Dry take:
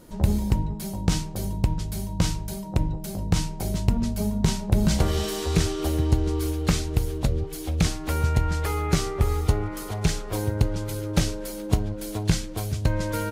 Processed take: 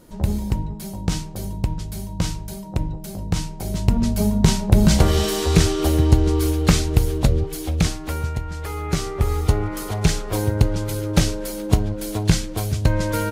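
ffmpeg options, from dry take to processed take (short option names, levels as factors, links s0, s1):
-af "volume=7.5,afade=t=in:st=3.64:d=0.49:silence=0.473151,afade=t=out:st=7.31:d=1.14:silence=0.237137,afade=t=in:st=8.45:d=1.31:silence=0.281838"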